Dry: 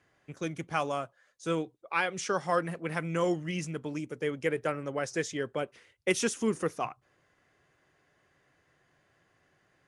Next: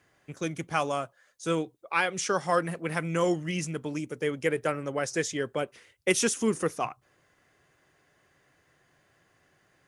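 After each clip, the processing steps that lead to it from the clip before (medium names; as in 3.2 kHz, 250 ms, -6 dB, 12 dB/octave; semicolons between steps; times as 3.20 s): treble shelf 7.5 kHz +8 dB; trim +2.5 dB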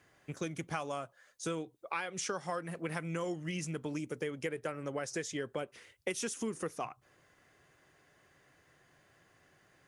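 compression 6:1, threshold -34 dBFS, peak gain reduction 15 dB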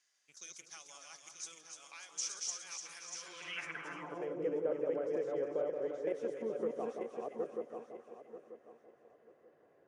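backward echo that repeats 469 ms, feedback 49%, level -1.5 dB; two-band feedback delay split 1.3 kHz, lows 174 ms, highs 297 ms, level -6 dB; band-pass sweep 5.8 kHz -> 490 Hz, 3.14–4.40 s; trim +2.5 dB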